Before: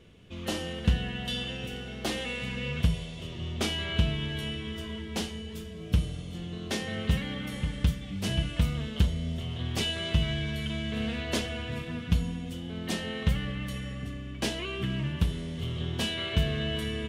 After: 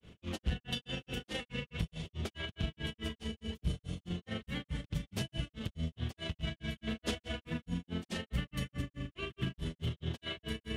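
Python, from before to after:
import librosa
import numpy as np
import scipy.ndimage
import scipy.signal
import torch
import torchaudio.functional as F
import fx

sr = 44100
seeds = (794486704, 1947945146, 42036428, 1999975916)

y = 10.0 ** (-19.5 / 20.0) * np.tanh(x / 10.0 ** (-19.5 / 20.0))
y = fx.rider(y, sr, range_db=4, speed_s=0.5)
y = fx.stretch_grains(y, sr, factor=0.63, grain_ms=81.0)
y = fx.granulator(y, sr, seeds[0], grain_ms=180.0, per_s=4.7, spray_ms=100.0, spread_st=0)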